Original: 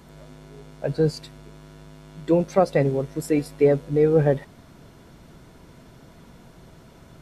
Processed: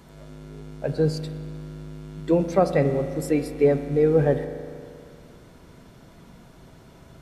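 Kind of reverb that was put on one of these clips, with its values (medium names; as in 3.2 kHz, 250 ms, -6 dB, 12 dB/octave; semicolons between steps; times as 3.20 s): spring tank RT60 2.2 s, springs 39 ms, chirp 25 ms, DRR 9 dB; trim -1 dB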